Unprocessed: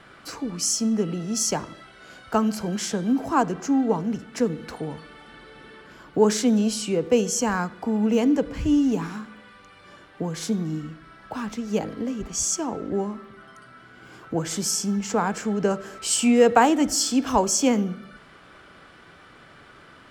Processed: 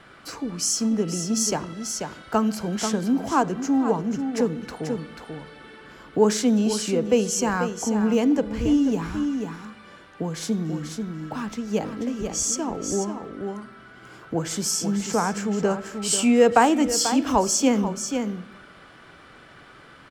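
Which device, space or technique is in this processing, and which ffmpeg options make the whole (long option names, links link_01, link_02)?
ducked delay: -filter_complex "[0:a]asplit=3[link_01][link_02][link_03];[link_02]adelay=488,volume=-5.5dB[link_04];[link_03]apad=whole_len=908042[link_05];[link_04][link_05]sidechaincompress=threshold=-23dB:ratio=8:attack=16:release=634[link_06];[link_01][link_06]amix=inputs=2:normalize=0"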